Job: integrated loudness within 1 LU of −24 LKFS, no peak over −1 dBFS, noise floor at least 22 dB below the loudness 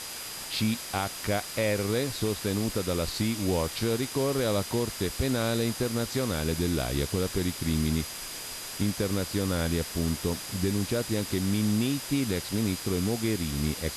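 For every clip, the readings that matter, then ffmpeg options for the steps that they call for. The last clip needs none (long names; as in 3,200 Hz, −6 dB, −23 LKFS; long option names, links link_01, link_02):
interfering tone 4,900 Hz; level of the tone −44 dBFS; background noise floor −39 dBFS; target noise floor −51 dBFS; integrated loudness −29.0 LKFS; sample peak −13.5 dBFS; target loudness −24.0 LKFS
→ -af "bandreject=frequency=4900:width=30"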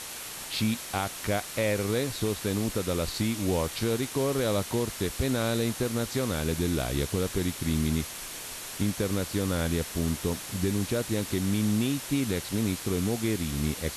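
interfering tone none found; background noise floor −40 dBFS; target noise floor −51 dBFS
→ -af "afftdn=noise_reduction=11:noise_floor=-40"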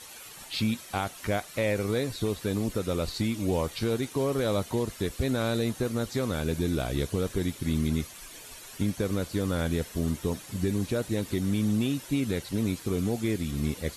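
background noise floor −46 dBFS; target noise floor −52 dBFS
→ -af "afftdn=noise_reduction=6:noise_floor=-46"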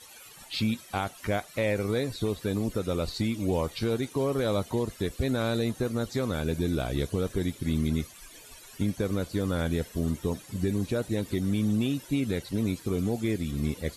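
background noise floor −50 dBFS; target noise floor −52 dBFS
→ -af "afftdn=noise_reduction=6:noise_floor=-50"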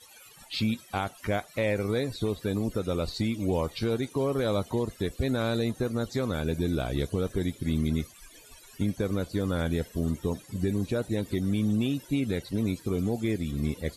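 background noise floor −53 dBFS; integrated loudness −29.5 LKFS; sample peak −15.5 dBFS; target loudness −24.0 LKFS
→ -af "volume=5.5dB"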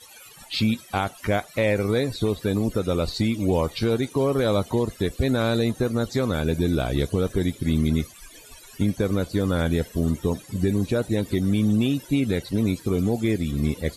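integrated loudness −24.0 LKFS; sample peak −10.0 dBFS; background noise floor −47 dBFS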